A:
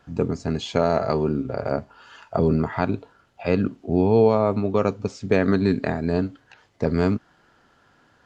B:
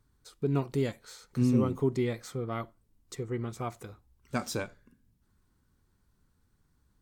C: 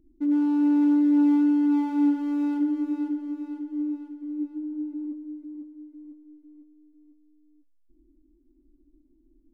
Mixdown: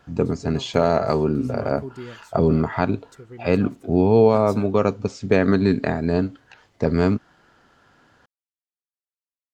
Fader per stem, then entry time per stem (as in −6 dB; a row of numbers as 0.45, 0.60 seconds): +2.0 dB, −7.0 dB, muted; 0.00 s, 0.00 s, muted